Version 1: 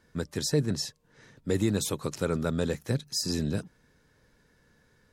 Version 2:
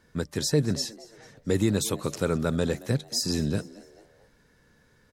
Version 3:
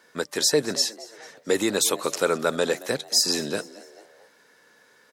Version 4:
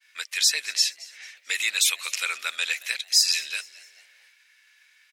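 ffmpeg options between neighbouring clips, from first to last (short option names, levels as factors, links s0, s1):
-filter_complex "[0:a]asplit=4[s0][s1][s2][s3];[s1]adelay=223,afreqshift=110,volume=0.0944[s4];[s2]adelay=446,afreqshift=220,volume=0.0407[s5];[s3]adelay=669,afreqshift=330,volume=0.0174[s6];[s0][s4][s5][s6]amix=inputs=4:normalize=0,volume=1.33"
-af "highpass=470,volume=2.51"
-af "agate=range=0.0224:threshold=0.002:ratio=3:detection=peak,highpass=f=2400:t=q:w=4.1"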